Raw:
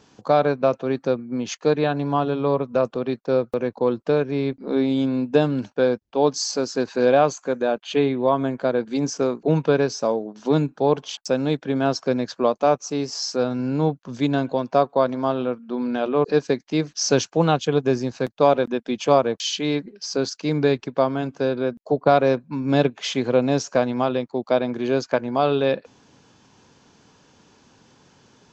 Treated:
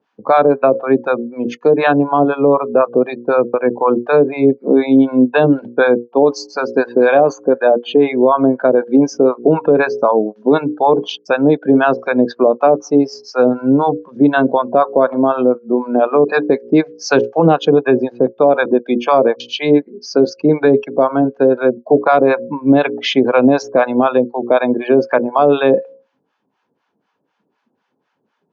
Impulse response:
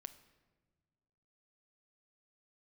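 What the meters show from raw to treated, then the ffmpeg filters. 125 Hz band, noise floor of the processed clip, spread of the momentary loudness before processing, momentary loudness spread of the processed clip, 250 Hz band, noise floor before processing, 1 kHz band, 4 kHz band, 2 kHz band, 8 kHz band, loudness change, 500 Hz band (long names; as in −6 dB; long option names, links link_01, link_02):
+1.5 dB, −69 dBFS, 6 LU, 4 LU, +9.0 dB, −59 dBFS, +8.0 dB, +2.0 dB, +10.5 dB, can't be measured, +8.0 dB, +8.5 dB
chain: -filter_complex "[0:a]afftdn=noise_reduction=24:noise_floor=-36,bandreject=frequency=60:width_type=h:width=6,bandreject=frequency=120:width_type=h:width=6,bandreject=frequency=180:width_type=h:width=6,bandreject=frequency=240:width_type=h:width=6,bandreject=frequency=300:width_type=h:width=6,bandreject=frequency=360:width_type=h:width=6,bandreject=frequency=420:width_type=h:width=6,bandreject=frequency=480:width_type=h:width=6,bandreject=frequency=540:width_type=h:width=6,acrossover=split=720[link_01][link_02];[link_01]aeval=exprs='val(0)*(1-1/2+1/2*cos(2*PI*4*n/s))':channel_layout=same[link_03];[link_02]aeval=exprs='val(0)*(1-1/2-1/2*cos(2*PI*4*n/s))':channel_layout=same[link_04];[link_03][link_04]amix=inputs=2:normalize=0,highpass=250,lowpass=2300,alimiter=level_in=19dB:limit=-1dB:release=50:level=0:latency=1,volume=-1dB"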